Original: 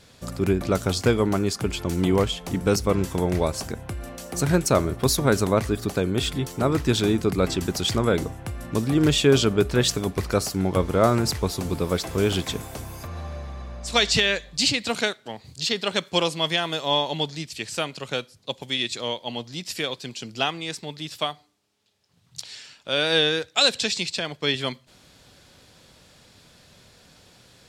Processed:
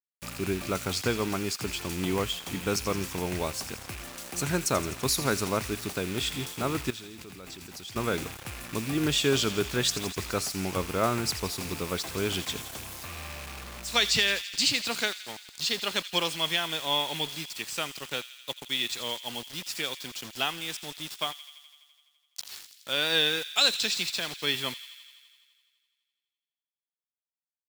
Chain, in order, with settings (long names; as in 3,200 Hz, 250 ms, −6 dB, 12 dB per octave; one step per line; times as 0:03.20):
loose part that buzzes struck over −33 dBFS, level −28 dBFS
bit-depth reduction 6 bits, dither none
parametric band 570 Hz −4.5 dB 1.1 octaves
0:06.90–0:07.96: output level in coarse steps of 19 dB
low-shelf EQ 280 Hz −8 dB
delay with a high-pass on its return 84 ms, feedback 74%, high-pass 2,500 Hz, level −11.5 dB
level −3 dB